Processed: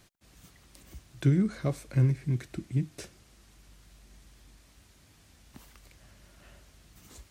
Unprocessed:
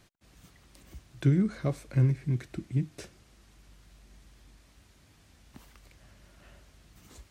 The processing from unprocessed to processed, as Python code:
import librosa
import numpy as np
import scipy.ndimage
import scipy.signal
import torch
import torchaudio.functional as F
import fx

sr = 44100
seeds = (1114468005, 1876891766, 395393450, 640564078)

y = fx.high_shelf(x, sr, hz=5200.0, db=5.0)